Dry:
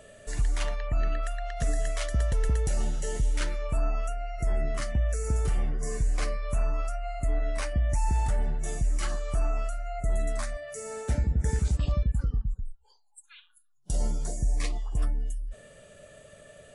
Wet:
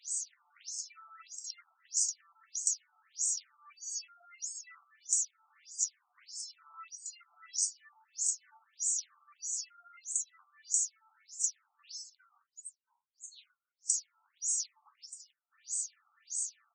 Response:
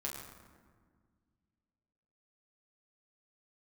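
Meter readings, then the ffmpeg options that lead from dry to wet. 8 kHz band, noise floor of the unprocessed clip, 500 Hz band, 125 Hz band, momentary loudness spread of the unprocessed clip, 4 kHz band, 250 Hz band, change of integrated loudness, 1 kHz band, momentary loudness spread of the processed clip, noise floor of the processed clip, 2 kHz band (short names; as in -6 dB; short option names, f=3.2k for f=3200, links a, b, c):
+10.0 dB, -61 dBFS, under -40 dB, under -40 dB, 7 LU, -1.0 dB, under -40 dB, -4.0 dB, -20.0 dB, 19 LU, -85 dBFS, -19.5 dB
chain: -filter_complex "[0:a]equalizer=f=100:t=o:w=0.67:g=-12,equalizer=f=630:t=o:w=0.67:g=-11,equalizer=f=1.6k:t=o:w=0.67:g=3,equalizer=f=6.3k:t=o:w=0.67:g=10,acrossover=split=140|3000[a][b][c];[b]acompressor=threshold=-40dB:ratio=6[d];[a][d][c]amix=inputs=3:normalize=0,flanger=delay=5.9:depth=4.5:regen=53:speed=0.21:shape=triangular,bandreject=f=1.7k:w=7,bandreject=f=149.7:t=h:w=4,bandreject=f=299.4:t=h:w=4,bandreject=f=449.1:t=h:w=4,bandreject=f=598.8:t=h:w=4,bandreject=f=748.5:t=h:w=4,bandreject=f=898.2:t=h:w=4,bandreject=f=1.0479k:t=h:w=4,bandreject=f=1.1976k:t=h:w=4,bandreject=f=1.3473k:t=h:w=4,bandreject=f=1.497k:t=h:w=4,bandreject=f=1.6467k:t=h:w=4,bandreject=f=1.7964k:t=h:w=4,bandreject=f=1.9461k:t=h:w=4,bandreject=f=2.0958k:t=h:w=4,bandreject=f=2.2455k:t=h:w=4,bandreject=f=2.3952k:t=h:w=4,bandreject=f=2.5449k:t=h:w=4,bandreject=f=2.6946k:t=h:w=4,bandreject=f=2.8443k:t=h:w=4,bandreject=f=2.994k:t=h:w=4,bandreject=f=3.1437k:t=h:w=4,bandreject=f=3.2934k:t=h:w=4,bandreject=f=3.4431k:t=h:w=4,bandreject=f=3.5928k:t=h:w=4,bandreject=f=3.7425k:t=h:w=4,bandreject=f=3.8922k:t=h:w=4,bandreject=f=4.0419k:t=h:w=4,bandreject=f=4.1916k:t=h:w=4,bandreject=f=4.3413k:t=h:w=4,aexciter=amount=15.8:drive=7:freq=5.2k,highshelf=f=7.1k:g=7,asplit=2[e][f];[f]aecho=0:1:176:0.0708[g];[e][g]amix=inputs=2:normalize=0,asoftclip=type=tanh:threshold=-1dB,asplit=2[h][i];[i]alimiter=limit=-12.5dB:level=0:latency=1,volume=-1dB[j];[h][j]amix=inputs=2:normalize=0,acompressor=threshold=-24dB:ratio=4,afftfilt=real='re*between(b*sr/1024,970*pow(6400/970,0.5+0.5*sin(2*PI*1.6*pts/sr))/1.41,970*pow(6400/970,0.5+0.5*sin(2*PI*1.6*pts/sr))*1.41)':imag='im*between(b*sr/1024,970*pow(6400/970,0.5+0.5*sin(2*PI*1.6*pts/sr))/1.41,970*pow(6400/970,0.5+0.5*sin(2*PI*1.6*pts/sr))*1.41)':win_size=1024:overlap=0.75,volume=-4.5dB"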